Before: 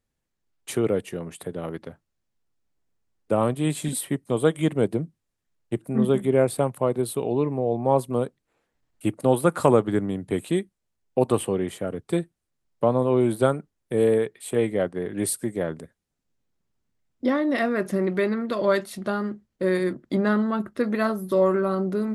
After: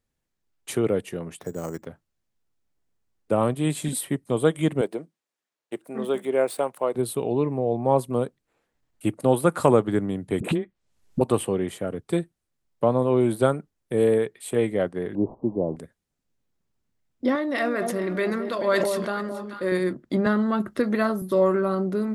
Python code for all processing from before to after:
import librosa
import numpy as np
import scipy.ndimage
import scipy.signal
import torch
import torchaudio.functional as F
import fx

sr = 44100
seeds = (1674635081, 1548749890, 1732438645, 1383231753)

y = fx.chain(x, sr, fx.lowpass(hz=2600.0, slope=12),
    fx.resample_bad(factor=6, down='none', up='hold'), at=(1.39, 1.86))
y = fx.chain(y, sr, fx.median_filter(points=3),
    fx.highpass(hz=410.0, slope=12), at=(4.81, 6.95))
y = fx.chain(y, sr, fx.env_lowpass_down(base_hz=1300.0, full_db=-19.5),
    fx.dispersion(late='highs', ms=44.0, hz=420.0),
    fx.band_squash(depth_pct=100), at=(10.4, 11.21))
y = fx.chain(y, sr, fx.delta_mod(bps=64000, step_db=-35.0),
    fx.steep_lowpass(hz=1000.0, slope=72),
    fx.dynamic_eq(hz=280.0, q=1.3, threshold_db=-34.0, ratio=4.0, max_db=4), at=(15.15, 15.76))
y = fx.chain(y, sr, fx.low_shelf(hz=260.0, db=-11.0),
    fx.echo_alternate(ms=217, hz=1000.0, feedback_pct=58, wet_db=-9.0),
    fx.sustainer(db_per_s=26.0), at=(17.35, 19.72))
y = fx.chain(y, sr, fx.notch(hz=2500.0, q=28.0),
    fx.band_squash(depth_pct=70), at=(20.26, 21.22))